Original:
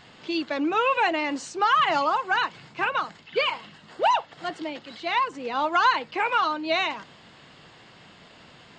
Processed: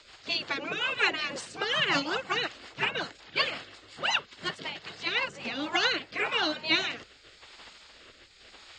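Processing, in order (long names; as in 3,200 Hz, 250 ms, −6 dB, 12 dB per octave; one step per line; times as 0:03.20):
gate on every frequency bin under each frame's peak −10 dB weak
rotating-speaker cabinet horn 5.5 Hz, later 0.9 Hz, at 0:05.12
level +6.5 dB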